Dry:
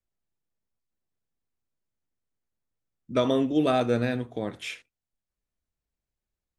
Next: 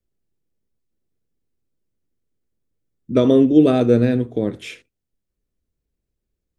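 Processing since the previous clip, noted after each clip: resonant low shelf 580 Hz +8.5 dB, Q 1.5; gain +1.5 dB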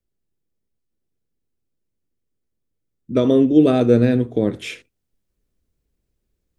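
vocal rider 2 s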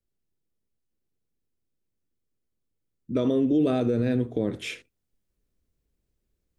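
limiter -12 dBFS, peak gain reduction 10 dB; gain -3.5 dB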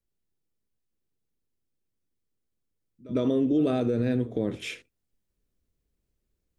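reverse echo 0.104 s -20.5 dB; gain -1.5 dB

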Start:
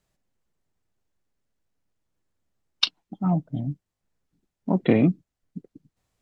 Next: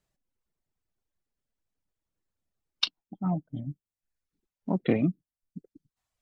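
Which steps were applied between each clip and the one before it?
reverb removal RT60 0.96 s; gain -5 dB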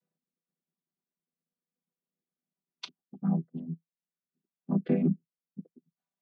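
chord vocoder minor triad, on E3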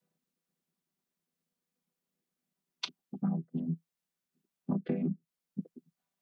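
compressor 10:1, threshold -34 dBFS, peak gain reduction 14 dB; gain +5.5 dB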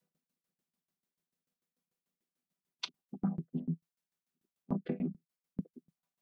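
tremolo saw down 6.8 Hz, depth 100%; gain +1 dB

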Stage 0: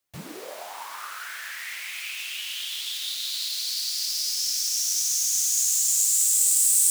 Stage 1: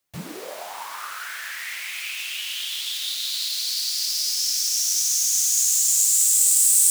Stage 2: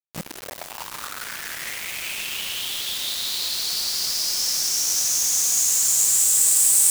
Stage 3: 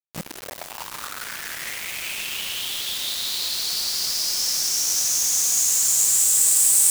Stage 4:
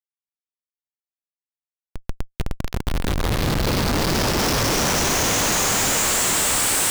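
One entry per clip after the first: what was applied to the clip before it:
bell 180 Hz +5 dB 0.23 oct; gain +3 dB
bit-crush 5-bit
nothing audible
Schmitt trigger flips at -18.5 dBFS; gain +3 dB

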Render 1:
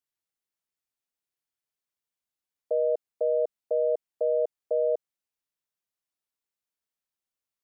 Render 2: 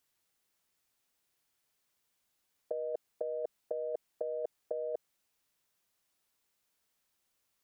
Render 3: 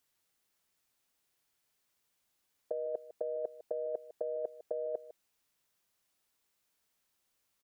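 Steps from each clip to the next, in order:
negative-ratio compressor -32 dBFS, ratio -0.5
echo 0.153 s -15.5 dB

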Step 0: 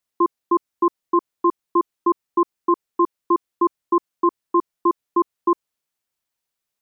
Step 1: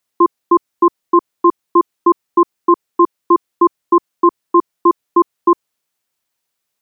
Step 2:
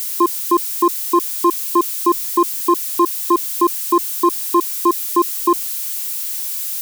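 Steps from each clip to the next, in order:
low shelf 63 Hz -9.5 dB; gain +7 dB
switching spikes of -17.5 dBFS; gain -3 dB

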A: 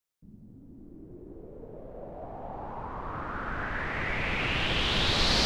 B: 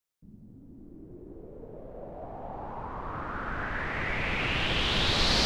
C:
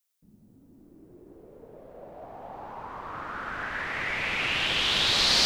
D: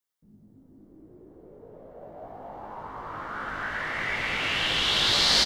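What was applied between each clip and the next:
nothing audible
tilt +2.5 dB/oct
notch 2500 Hz, Q 11; doubler 19 ms -4.5 dB; mismatched tape noise reduction decoder only

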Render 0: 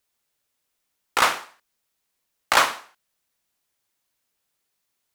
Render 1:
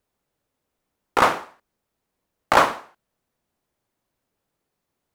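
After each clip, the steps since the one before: tilt shelf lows +9 dB, about 1300 Hz; gain +1.5 dB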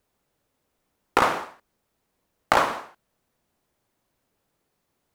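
compressor 12:1, threshold -19 dBFS, peak gain reduction 10 dB; gain +4 dB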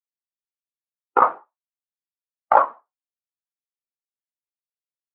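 spectral expander 2.5:1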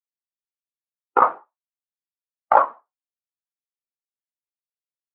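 nothing audible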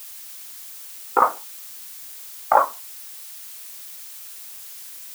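added noise blue -38 dBFS; gain -1 dB

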